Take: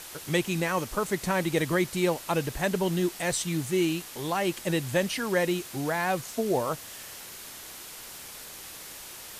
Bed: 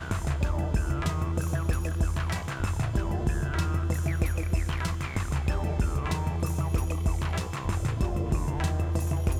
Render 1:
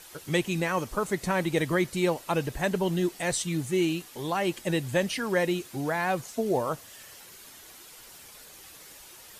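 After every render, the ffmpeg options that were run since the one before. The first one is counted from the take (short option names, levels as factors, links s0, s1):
-af "afftdn=nr=8:nf=-44"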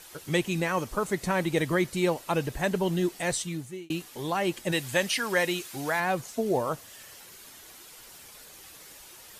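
-filter_complex "[0:a]asettb=1/sr,asplit=3[s0][s1][s2];[s0]atrim=end=4.724[s3];[s1]atrim=start=4.72:end=6,asetpts=PTS-STARTPTS,afade=t=in:d=0.004:c=qsin,afade=t=out:st=1.276:d=0.004:c=qsin,tiltshelf=f=690:g=-5.5[s4];[s2]atrim=start=5.996[s5];[s3][s4]acrossfade=d=0.004:c1=hsin:c2=qsin[s6];[s6][s5]acrossfade=d=0.004:c1=qsin:c2=hsin,asplit=2[s7][s8];[s7]atrim=end=3.9,asetpts=PTS-STARTPTS,afade=t=out:st=3.29:d=0.61[s9];[s8]atrim=start=3.9,asetpts=PTS-STARTPTS,afade=t=in:d=0.004:c=hsin[s10];[s9][s10]concat=n=2:v=0:a=1"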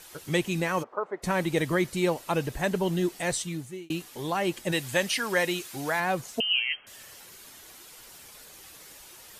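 -filter_complex "[0:a]asplit=3[s0][s1][s2];[s0]afade=t=out:st=0.82:d=0.02[s3];[s1]asuperpass=centerf=750:order=4:qfactor=0.81,afade=t=in:st=0.82:d=0.02,afade=t=out:st=1.22:d=0.02[s4];[s2]afade=t=in:st=1.22:d=0.02[s5];[s3][s4][s5]amix=inputs=3:normalize=0,asettb=1/sr,asplit=3[s6][s7][s8];[s6]atrim=end=6.404[s9];[s7]atrim=start=6.4:end=6.87,asetpts=PTS-STARTPTS,afade=t=in:d=0.004:c=qsin,afade=t=out:st=0.466:d=0.004:c=qsin,lowpass=f=2800:t=q:w=0.5098,lowpass=f=2800:t=q:w=0.6013,lowpass=f=2800:t=q:w=0.9,lowpass=f=2800:t=q:w=2.563,afreqshift=-3300[s10];[s8]atrim=start=6.866[s11];[s9][s10]acrossfade=d=0.004:c1=hsin:c2=qsin[s12];[s12][s11]acrossfade=d=0.004:c1=qsin:c2=hsin"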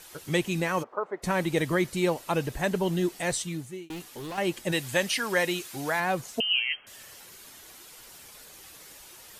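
-filter_complex "[0:a]asettb=1/sr,asplit=3[s0][s1][s2];[s0]atrim=end=3.874[s3];[s1]atrim=start=3.87:end=4.38,asetpts=PTS-STARTPTS,afade=t=in:d=0.004:c=qsin,afade=t=out:st=0.506:d=0.004:c=qsin,volume=53.1,asoftclip=hard,volume=0.0188[s4];[s2]atrim=start=4.376[s5];[s3][s4]acrossfade=d=0.004:c1=hsin:c2=qsin[s6];[s6][s5]acrossfade=d=0.004:c1=qsin:c2=hsin"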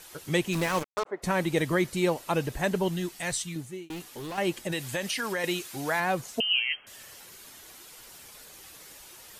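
-filter_complex "[0:a]asplit=3[s0][s1][s2];[s0]afade=t=out:st=0.52:d=0.02[s3];[s1]acrusher=bits=4:mix=0:aa=0.5,afade=t=in:st=0.52:d=0.02,afade=t=out:st=1.05:d=0.02[s4];[s2]afade=t=in:st=1.05:d=0.02[s5];[s3][s4][s5]amix=inputs=3:normalize=0,asettb=1/sr,asplit=3[s6][s7][s8];[s6]atrim=end=2.884[s9];[s7]atrim=start=2.88:end=3.56,asetpts=PTS-STARTPTS,afade=t=in:d=0.004:c=qsin,afade=t=out:st=0.676:d=0.004:c=qsin,equalizer=f=420:t=o:w=2:g=-8[s10];[s8]atrim=start=3.556[s11];[s9][s10]acrossfade=d=0.004:c1=hsin:c2=qsin[s12];[s12][s11]acrossfade=d=0.004:c1=qsin:c2=hsin,asettb=1/sr,asplit=3[s13][s14][s15];[s13]atrim=end=4.644[s16];[s14]atrim=start=4.64:end=5.44,asetpts=PTS-STARTPTS,afade=t=in:d=0.004:c=qsin,afade=t=out:st=0.796:d=0.004:c=qsin,acompressor=threshold=0.0501:ratio=6:attack=3.2:release=140:knee=1:detection=peak[s17];[s15]atrim=start=5.436[s18];[s16][s17]acrossfade=d=0.004:c1=hsin:c2=qsin[s19];[s19][s18]acrossfade=d=0.004:c1=qsin:c2=hsin"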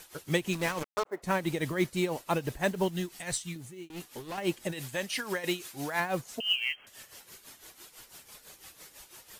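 -af "acrusher=bits=6:mode=log:mix=0:aa=0.000001,tremolo=f=6:d=0.72"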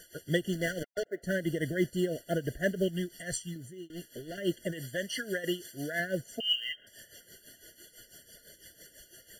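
-af "afftfilt=real='re*eq(mod(floor(b*sr/1024/690),2),0)':imag='im*eq(mod(floor(b*sr/1024/690),2),0)':win_size=1024:overlap=0.75"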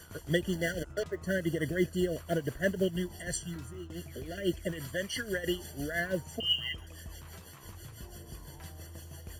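-filter_complex "[1:a]volume=0.1[s0];[0:a][s0]amix=inputs=2:normalize=0"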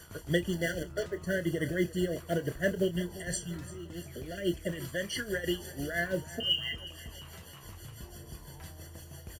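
-filter_complex "[0:a]asplit=2[s0][s1];[s1]adelay=29,volume=0.251[s2];[s0][s2]amix=inputs=2:normalize=0,aecho=1:1:345|690|1035|1380:0.133|0.064|0.0307|0.0147"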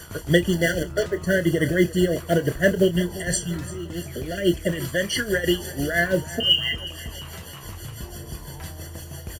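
-af "volume=3.35"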